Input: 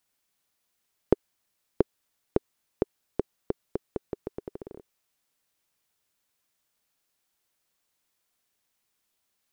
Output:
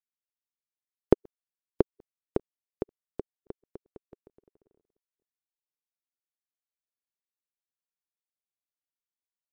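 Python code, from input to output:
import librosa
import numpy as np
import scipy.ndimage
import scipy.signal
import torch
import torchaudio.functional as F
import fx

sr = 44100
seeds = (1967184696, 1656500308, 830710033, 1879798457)

y = fx.reverse_delay(x, sr, ms=238, wet_db=-14.0)
y = fx.upward_expand(y, sr, threshold_db=-38.0, expansion=2.5)
y = F.gain(torch.from_numpy(y), 2.5).numpy()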